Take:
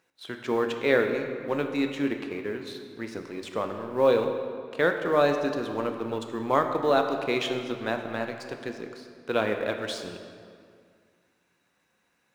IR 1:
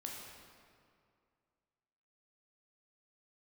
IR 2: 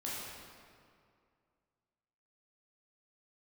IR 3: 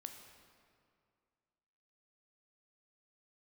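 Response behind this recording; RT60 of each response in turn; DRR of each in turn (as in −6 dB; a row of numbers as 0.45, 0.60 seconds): 3; 2.3, 2.2, 2.2 seconds; −1.5, −7.0, 5.0 decibels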